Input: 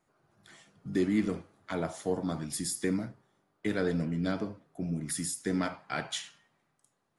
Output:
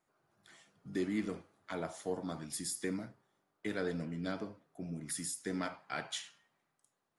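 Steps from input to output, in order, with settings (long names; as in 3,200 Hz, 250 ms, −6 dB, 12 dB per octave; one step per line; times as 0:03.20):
low-shelf EQ 250 Hz −6.5 dB
level −4.5 dB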